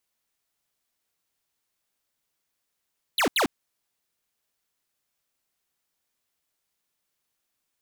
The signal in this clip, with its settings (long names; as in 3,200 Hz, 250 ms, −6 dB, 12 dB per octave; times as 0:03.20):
repeated falling chirps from 4,400 Hz, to 210 Hz, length 0.10 s square, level −22 dB, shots 2, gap 0.08 s